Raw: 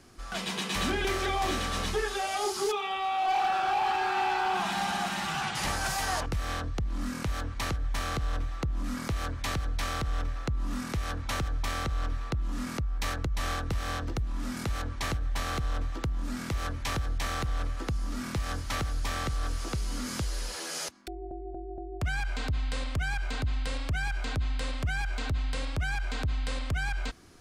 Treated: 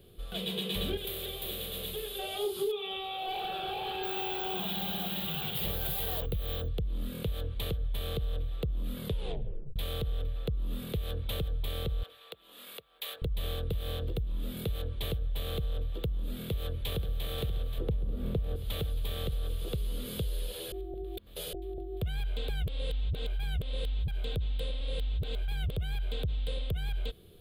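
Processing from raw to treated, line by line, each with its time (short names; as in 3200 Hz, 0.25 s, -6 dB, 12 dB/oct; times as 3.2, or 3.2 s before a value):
0.97–2.19 spectral compressor 2:1
4.03–6.68 careless resampling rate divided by 2×, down none, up hold
9.01 tape stop 0.75 s
12.03–13.22 HPF 840 Hz
16.46–17.27 echo throw 0.53 s, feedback 75%, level -8.5 dB
17.78–18.56 tilt shelf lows +8.5 dB, about 1500 Hz
20.72–21.53 reverse
22.49–24.08 reverse
24.81–25.72 reverse
whole clip: EQ curve 190 Hz 0 dB, 270 Hz -12 dB, 450 Hz +6 dB, 880 Hz -16 dB, 2000 Hz -15 dB, 3500 Hz +4 dB, 5700 Hz -26 dB, 14000 Hz +9 dB; compressor 6:1, threshold -30 dBFS; gain +1.5 dB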